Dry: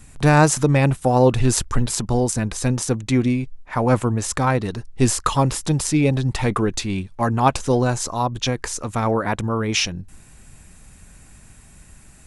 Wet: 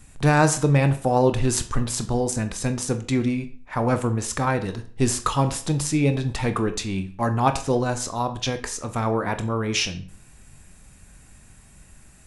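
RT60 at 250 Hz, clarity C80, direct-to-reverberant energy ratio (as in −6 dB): 0.45 s, 17.0 dB, 8.0 dB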